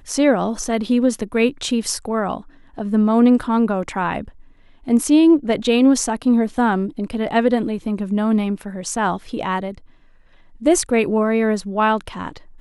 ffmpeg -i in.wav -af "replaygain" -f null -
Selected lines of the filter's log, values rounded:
track_gain = -1.8 dB
track_peak = 0.476